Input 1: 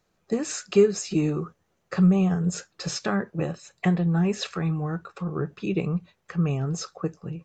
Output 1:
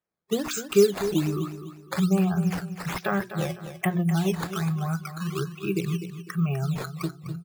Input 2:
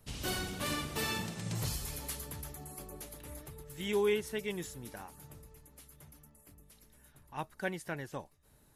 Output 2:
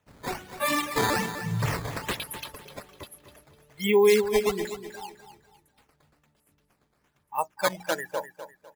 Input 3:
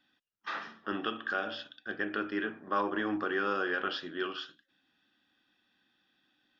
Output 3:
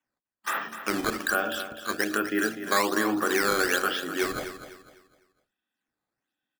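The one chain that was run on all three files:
spectral noise reduction 21 dB; high-pass 120 Hz 6 dB/octave; peaking EQ 4.5 kHz -8.5 dB 0.5 oct; hum notches 60/120/180/240/300/360 Hz; in parallel at -2.5 dB: compression, threshold -34 dBFS; on the sum: decimation with a swept rate 9×, swing 160% 1.2 Hz; on a send: feedback delay 251 ms, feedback 33%, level -11 dB; on the sum: normalise loudness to -27 LUFS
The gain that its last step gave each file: -0.5 dB, +9.0 dB, +4.5 dB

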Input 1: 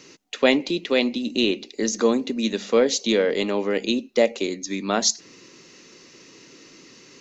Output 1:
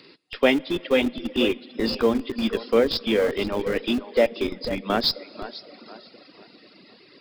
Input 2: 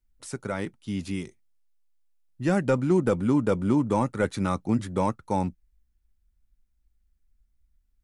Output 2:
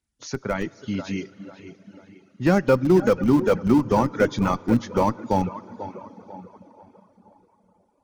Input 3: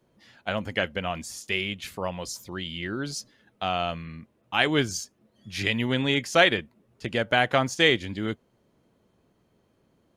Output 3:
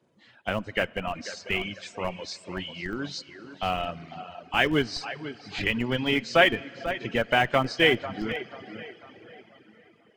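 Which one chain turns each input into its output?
knee-point frequency compression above 2.8 kHz 1.5:1; high-pass 110 Hz 12 dB/octave; on a send: tape echo 492 ms, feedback 43%, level -10 dB, low-pass 2.8 kHz; on the sum: plate-style reverb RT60 4.4 s, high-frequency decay 0.95×, DRR 9.5 dB; reverb removal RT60 1.2 s; in parallel at -9 dB: Schmitt trigger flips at -22 dBFS; on the sum: peak normalisation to -6 dBFS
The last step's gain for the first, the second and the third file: -1.0 dB, +5.0 dB, 0.0 dB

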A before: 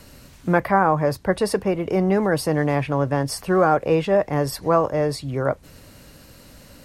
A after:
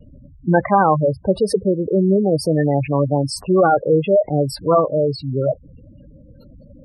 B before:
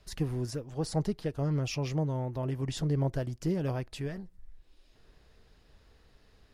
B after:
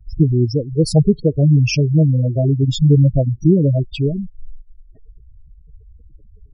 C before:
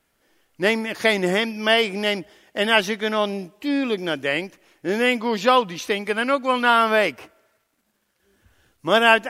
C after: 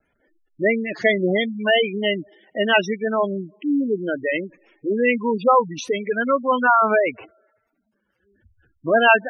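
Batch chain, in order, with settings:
spectral gate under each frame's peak -10 dB strong; vibrato 1.7 Hz 31 cents; peak normalisation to -2 dBFS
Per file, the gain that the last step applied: +4.5 dB, +18.5 dB, +2.5 dB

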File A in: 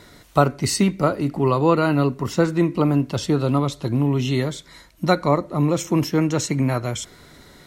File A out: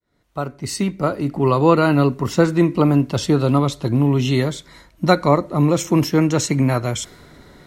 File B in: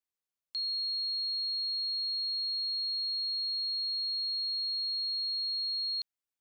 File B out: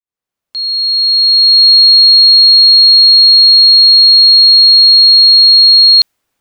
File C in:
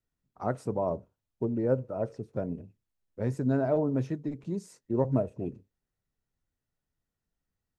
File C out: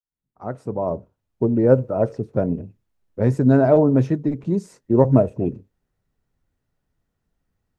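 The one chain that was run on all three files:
fade-in on the opening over 1.68 s; tape noise reduction on one side only decoder only; peak normalisation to -1.5 dBFS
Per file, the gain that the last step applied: +3.5 dB, +30.0 dB, +12.0 dB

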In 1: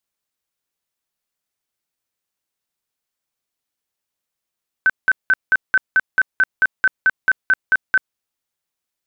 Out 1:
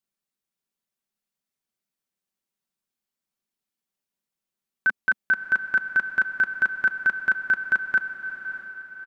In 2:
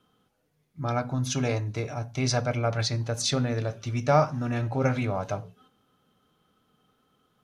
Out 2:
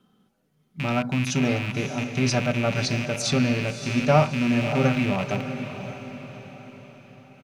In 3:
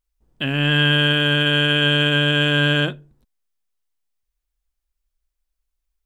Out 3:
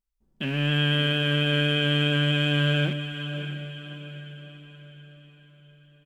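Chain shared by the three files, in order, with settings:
rattle on loud lows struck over -33 dBFS, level -20 dBFS; peaking EQ 220 Hz +9 dB 1 oct; comb 5.2 ms, depth 33%; on a send: echo that smears into a reverb 606 ms, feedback 47%, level -10 dB; on the sum: normalise loudness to -24 LUFS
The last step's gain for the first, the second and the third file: -7.0 dB, 0.0 dB, -9.0 dB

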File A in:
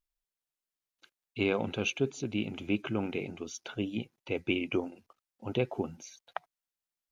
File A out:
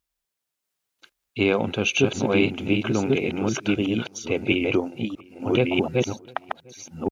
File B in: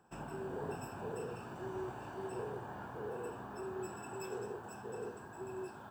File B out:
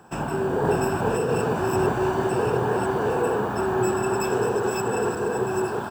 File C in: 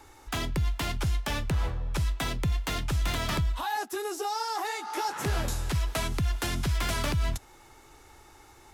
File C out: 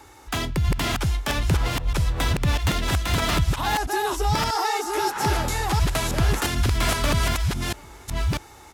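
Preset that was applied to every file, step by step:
chunks repeated in reverse 644 ms, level -1 dB; high-pass 43 Hz; echo from a far wall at 120 m, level -26 dB; normalise loudness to -24 LUFS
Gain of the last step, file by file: +8.0 dB, +17.5 dB, +5.0 dB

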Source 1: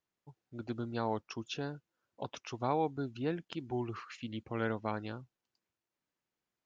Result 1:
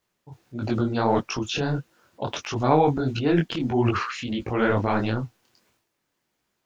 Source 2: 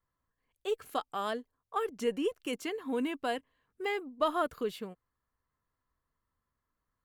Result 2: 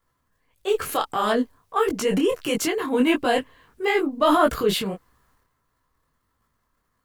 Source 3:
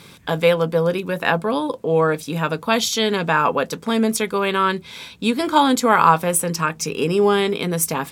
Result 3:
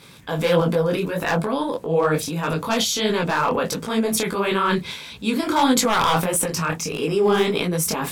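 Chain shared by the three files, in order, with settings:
wavefolder -8 dBFS; transient shaper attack -2 dB, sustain +10 dB; detune thickener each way 54 cents; peak normalisation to -6 dBFS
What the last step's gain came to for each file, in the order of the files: +16.5 dB, +15.5 dB, +1.5 dB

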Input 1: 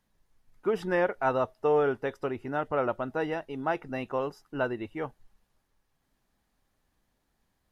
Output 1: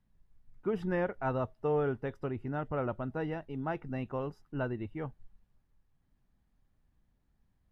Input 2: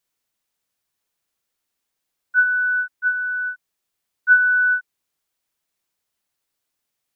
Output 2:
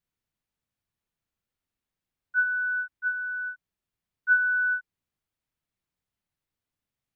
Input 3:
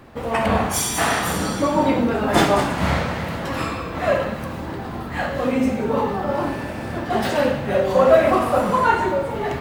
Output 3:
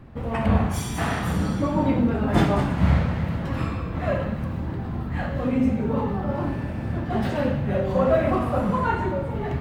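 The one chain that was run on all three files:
tone controls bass +13 dB, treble -7 dB; trim -7.5 dB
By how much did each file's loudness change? -5.0 LU, -7.5 LU, -3.5 LU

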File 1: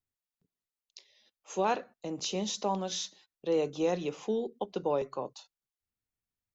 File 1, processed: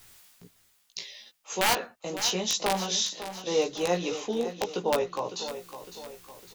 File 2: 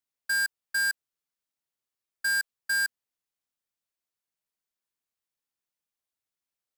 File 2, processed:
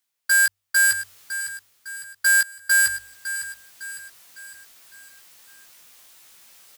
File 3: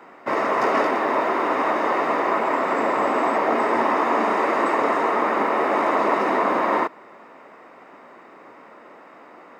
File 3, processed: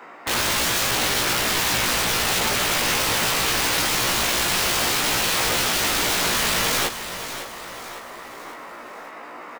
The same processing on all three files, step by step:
tilt shelf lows -4 dB, about 740 Hz; de-hum 48.87 Hz, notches 3; reverse; upward compressor, threshold -34 dBFS; reverse; integer overflow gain 19.5 dB; doubling 17 ms -3 dB; on a send: feedback delay 556 ms, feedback 47%, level -11.5 dB; on the sum: peak normalisation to -12 dBFS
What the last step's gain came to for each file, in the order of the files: +3.0 dB, +4.5 dB, +0.5 dB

